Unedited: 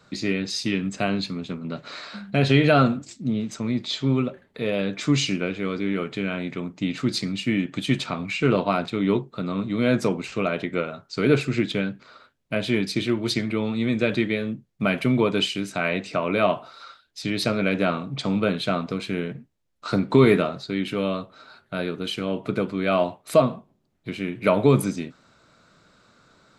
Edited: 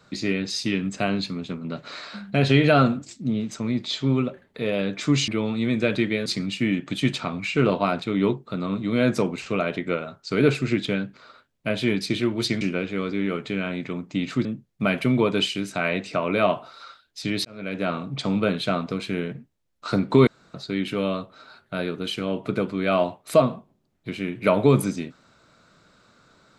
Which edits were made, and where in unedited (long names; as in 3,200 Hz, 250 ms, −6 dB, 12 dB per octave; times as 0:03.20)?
0:05.28–0:07.12: swap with 0:13.47–0:14.45
0:17.45–0:18.05: fade in
0:20.27–0:20.54: fill with room tone